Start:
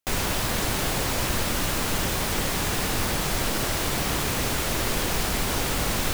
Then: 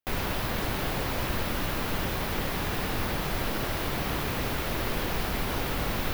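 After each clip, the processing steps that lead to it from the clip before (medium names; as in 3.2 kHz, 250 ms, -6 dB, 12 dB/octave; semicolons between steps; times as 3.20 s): peaking EQ 7.7 kHz -12.5 dB 1.2 oct; trim -3 dB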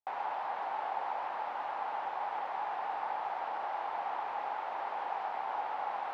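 ladder band-pass 880 Hz, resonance 75%; trim +5 dB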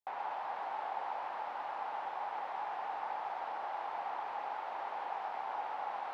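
feedback echo behind a high-pass 120 ms, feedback 75%, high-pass 4.3 kHz, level -4 dB; trim -3 dB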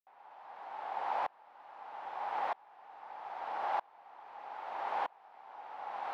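sawtooth tremolo in dB swelling 0.79 Hz, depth 31 dB; trim +8 dB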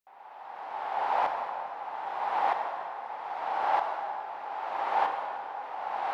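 reverberation RT60 2.8 s, pre-delay 28 ms, DRR 2.5 dB; trim +6.5 dB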